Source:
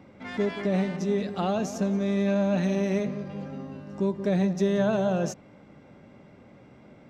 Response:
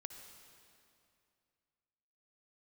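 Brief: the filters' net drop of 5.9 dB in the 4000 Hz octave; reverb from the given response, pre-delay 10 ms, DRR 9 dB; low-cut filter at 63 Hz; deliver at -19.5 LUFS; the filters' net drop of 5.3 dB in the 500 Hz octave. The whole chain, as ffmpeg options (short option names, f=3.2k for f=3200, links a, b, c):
-filter_complex "[0:a]highpass=63,equalizer=f=500:t=o:g=-7,equalizer=f=4k:t=o:g=-7.5,asplit=2[a][b];[1:a]atrim=start_sample=2205,adelay=10[c];[b][c]afir=irnorm=-1:irlink=0,volume=-5dB[d];[a][d]amix=inputs=2:normalize=0,volume=8dB"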